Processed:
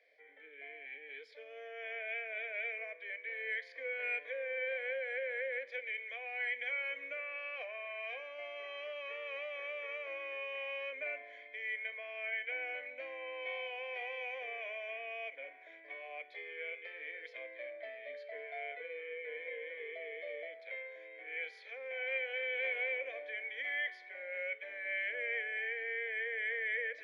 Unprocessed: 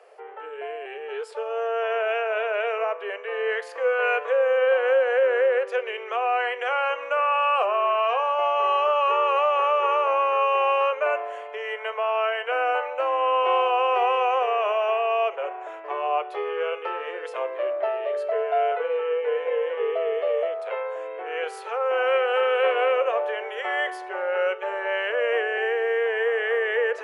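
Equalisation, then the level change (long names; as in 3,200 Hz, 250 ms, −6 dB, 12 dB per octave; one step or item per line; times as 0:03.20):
formant filter i
parametric band 1,300 Hz −3 dB 0.77 octaves
phaser with its sweep stopped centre 1,900 Hz, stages 8
+9.0 dB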